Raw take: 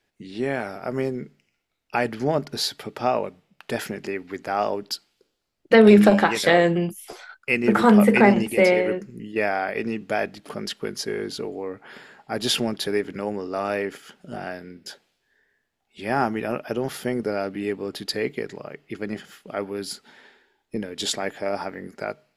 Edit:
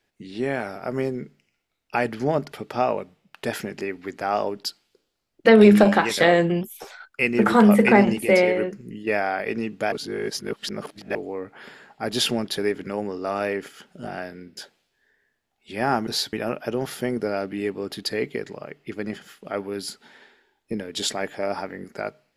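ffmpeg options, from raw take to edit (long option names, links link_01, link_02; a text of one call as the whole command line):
ffmpeg -i in.wav -filter_complex "[0:a]asplit=8[link_01][link_02][link_03][link_04][link_05][link_06][link_07][link_08];[link_01]atrim=end=2.522[link_09];[link_02]atrim=start=2.778:end=6.874[link_10];[link_03]atrim=start=6.87:end=7.2,asetpts=PTS-STARTPTS,asetrate=48510,aresample=44100[link_11];[link_04]atrim=start=7.196:end=10.212[link_12];[link_05]atrim=start=10.208:end=11.442,asetpts=PTS-STARTPTS,areverse[link_13];[link_06]atrim=start=11.438:end=16.362[link_14];[link_07]atrim=start=2.518:end=2.782[link_15];[link_08]atrim=start=16.358[link_16];[link_09][link_10]acrossfade=duration=0.004:curve1=hsin:curve2=hsin[link_17];[link_17][link_11]acrossfade=duration=0.004:curve1=hsin:curve2=hsin[link_18];[link_18][link_12]acrossfade=duration=0.004:curve1=hsin:curve2=hsin[link_19];[link_19][link_13]acrossfade=duration=0.004:curve1=hsin:curve2=hsin[link_20];[link_20][link_14]acrossfade=duration=0.004:curve1=hsin:curve2=hsin[link_21];[link_21][link_15]acrossfade=duration=0.004:curve1=hsin:curve2=hsin[link_22];[link_22][link_16]acrossfade=duration=0.004:curve1=hsin:curve2=hsin" out.wav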